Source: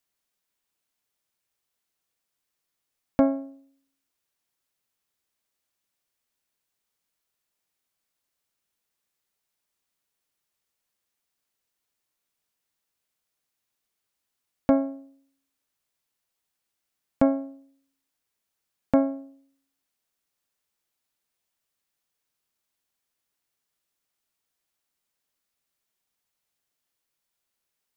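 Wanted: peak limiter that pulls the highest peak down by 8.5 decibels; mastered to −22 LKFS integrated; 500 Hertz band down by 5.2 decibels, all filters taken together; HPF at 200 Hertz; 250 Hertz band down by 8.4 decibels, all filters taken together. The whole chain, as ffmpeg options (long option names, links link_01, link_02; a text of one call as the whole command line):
ffmpeg -i in.wav -af "highpass=200,equalizer=frequency=250:width_type=o:gain=-6.5,equalizer=frequency=500:width_type=o:gain=-5,volume=16.5dB,alimiter=limit=-5dB:level=0:latency=1" out.wav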